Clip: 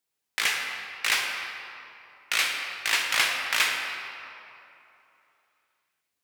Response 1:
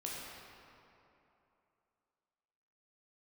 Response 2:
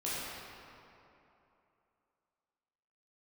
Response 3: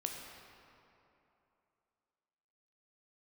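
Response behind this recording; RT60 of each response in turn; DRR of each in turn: 3; 3.0 s, 3.0 s, 3.0 s; -5.0 dB, -10.0 dB, 1.0 dB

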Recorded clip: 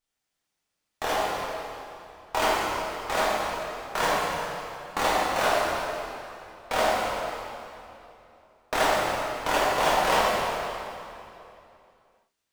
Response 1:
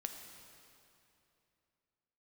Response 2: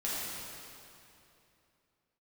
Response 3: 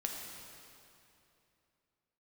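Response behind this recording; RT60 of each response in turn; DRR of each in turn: 2; 2.8 s, 2.8 s, 2.8 s; 4.5 dB, -8.5 dB, 0.0 dB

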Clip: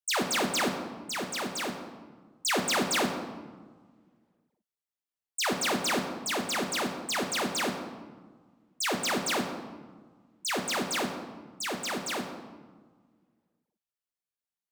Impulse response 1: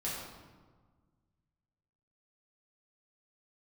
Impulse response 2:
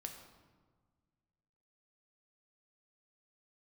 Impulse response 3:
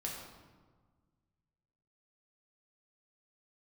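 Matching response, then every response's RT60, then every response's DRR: 2; 1.5 s, 1.5 s, 1.5 s; -8.0 dB, 3.5 dB, -3.0 dB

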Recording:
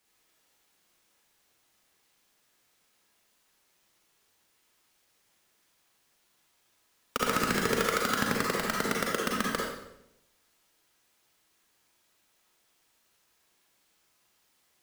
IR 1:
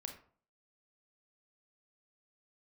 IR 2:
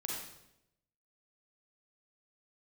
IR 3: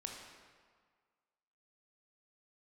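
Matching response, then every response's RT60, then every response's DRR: 2; 0.50 s, 0.85 s, 1.7 s; 4.0 dB, -3.0 dB, 0.5 dB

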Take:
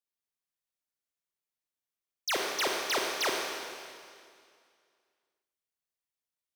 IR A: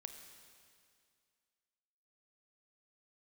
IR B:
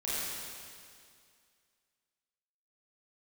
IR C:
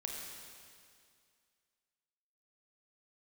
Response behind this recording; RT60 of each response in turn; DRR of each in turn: C; 2.2 s, 2.2 s, 2.2 s; 6.0 dB, -10.5 dB, -1.0 dB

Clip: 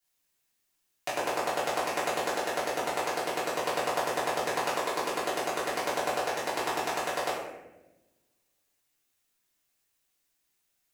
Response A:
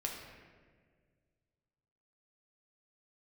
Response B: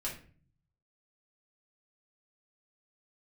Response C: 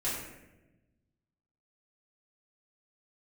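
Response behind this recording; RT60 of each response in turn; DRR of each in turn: C; 1.7 s, 0.45 s, 1.0 s; -1.0 dB, -5.0 dB, -10.5 dB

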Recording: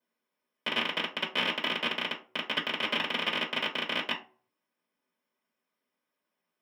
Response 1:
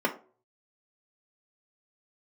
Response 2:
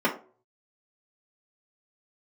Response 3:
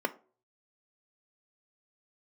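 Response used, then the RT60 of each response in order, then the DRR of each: 2; 0.40 s, 0.40 s, 0.40 s; 1.5 dB, -3.0 dB, 9.0 dB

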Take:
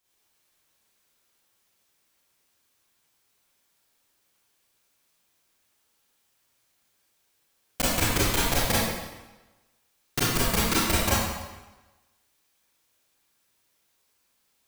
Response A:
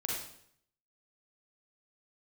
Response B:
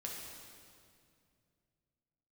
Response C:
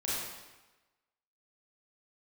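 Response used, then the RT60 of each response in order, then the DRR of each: C; 0.65 s, 2.3 s, 1.1 s; -3.5 dB, -2.5 dB, -8.5 dB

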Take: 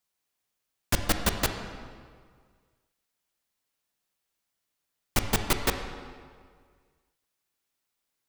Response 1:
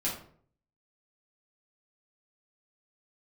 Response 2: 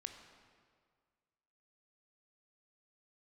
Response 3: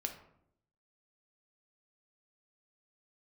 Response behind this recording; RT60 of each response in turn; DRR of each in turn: 2; 0.55 s, 1.9 s, 0.70 s; -7.5 dB, 5.5 dB, 3.5 dB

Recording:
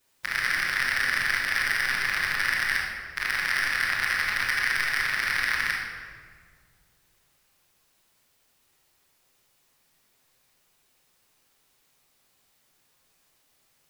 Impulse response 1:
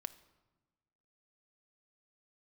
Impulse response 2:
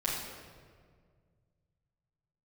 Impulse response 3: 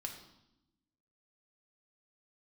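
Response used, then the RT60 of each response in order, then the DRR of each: 2; 1.2 s, 1.9 s, 0.85 s; 11.5 dB, -9.0 dB, 1.5 dB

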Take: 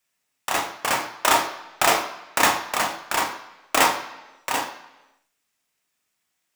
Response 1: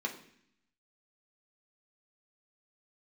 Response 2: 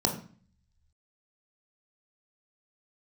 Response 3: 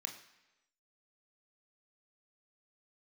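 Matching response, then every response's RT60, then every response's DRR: 3; 0.65 s, 0.45 s, 1.0 s; 0.0 dB, 2.0 dB, 3.5 dB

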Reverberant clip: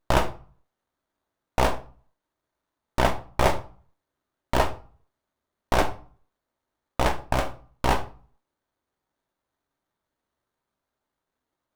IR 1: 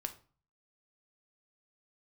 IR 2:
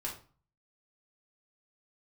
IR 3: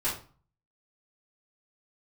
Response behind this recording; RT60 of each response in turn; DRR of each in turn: 1; 0.40 s, 0.40 s, 0.40 s; 6.5 dB, -3.5 dB, -11.0 dB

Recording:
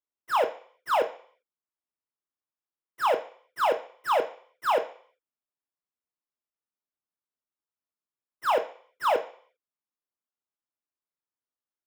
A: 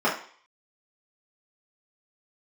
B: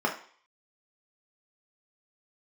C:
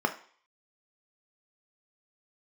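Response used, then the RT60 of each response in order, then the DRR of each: C; 0.50 s, 0.50 s, 0.50 s; -7.5 dB, -0.5 dB, 5.0 dB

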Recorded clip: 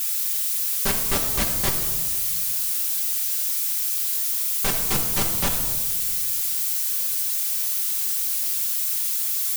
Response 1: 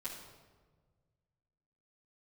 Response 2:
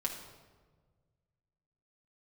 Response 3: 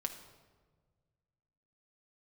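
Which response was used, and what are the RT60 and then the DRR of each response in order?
2; 1.5 s, 1.5 s, 1.5 s; -10.5 dB, -1.5 dB, 3.0 dB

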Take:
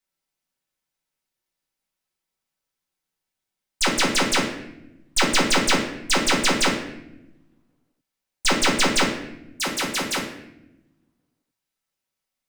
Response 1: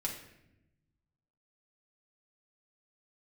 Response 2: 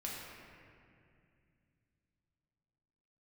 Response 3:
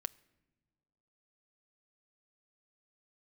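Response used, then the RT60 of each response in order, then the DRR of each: 1; 0.85 s, 2.4 s, no single decay rate; -2.5 dB, -5.0 dB, 13.0 dB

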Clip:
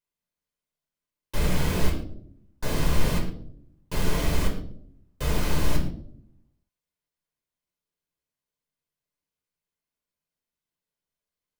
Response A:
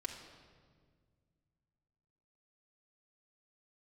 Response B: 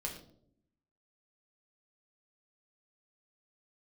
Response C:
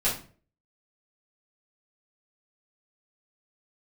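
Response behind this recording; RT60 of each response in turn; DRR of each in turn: B; 1.8 s, 0.65 s, 0.45 s; -2.0 dB, -0.5 dB, -10.5 dB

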